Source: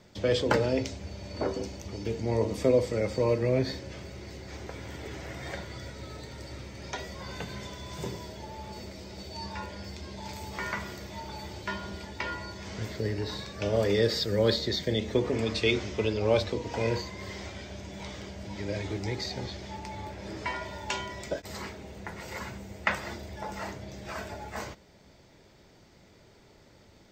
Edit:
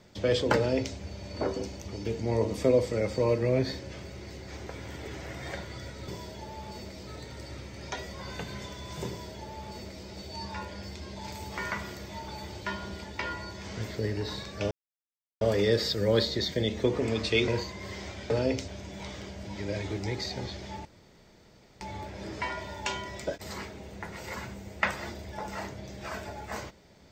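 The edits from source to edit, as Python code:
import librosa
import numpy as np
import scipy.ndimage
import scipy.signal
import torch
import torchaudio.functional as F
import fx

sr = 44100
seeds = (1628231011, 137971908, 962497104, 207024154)

y = fx.edit(x, sr, fx.duplicate(start_s=0.57, length_s=0.38, to_s=17.68),
    fx.duplicate(start_s=8.09, length_s=0.99, to_s=6.08),
    fx.insert_silence(at_s=13.72, length_s=0.7),
    fx.cut(start_s=15.79, length_s=1.07),
    fx.insert_room_tone(at_s=19.85, length_s=0.96), tone=tone)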